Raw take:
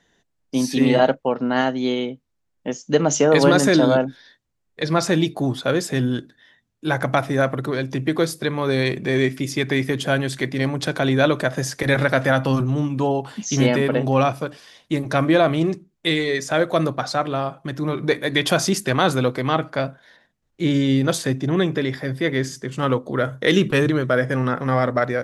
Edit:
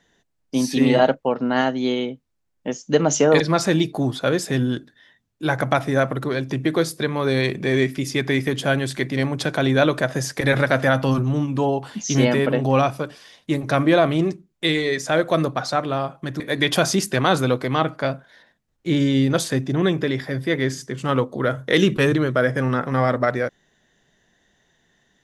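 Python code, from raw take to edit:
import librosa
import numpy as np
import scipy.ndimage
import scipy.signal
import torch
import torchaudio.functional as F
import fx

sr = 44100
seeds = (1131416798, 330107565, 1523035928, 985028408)

y = fx.edit(x, sr, fx.cut(start_s=3.4, length_s=1.42),
    fx.cut(start_s=17.82, length_s=0.32), tone=tone)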